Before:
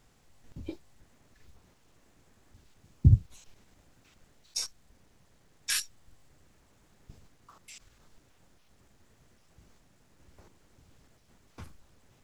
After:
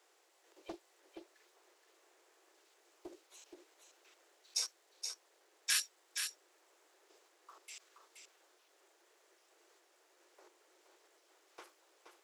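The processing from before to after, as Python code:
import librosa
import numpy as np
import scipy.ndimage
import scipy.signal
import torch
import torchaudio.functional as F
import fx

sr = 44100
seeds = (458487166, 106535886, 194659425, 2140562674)

y = scipy.signal.sosfilt(scipy.signal.butter(16, 330.0, 'highpass', fs=sr, output='sos'), x)
y = y + 10.0 ** (-6.5 / 20.0) * np.pad(y, (int(474 * sr / 1000.0), 0))[:len(y)]
y = fx.doppler_dist(y, sr, depth_ms=0.56)
y = y * 10.0 ** (-2.0 / 20.0)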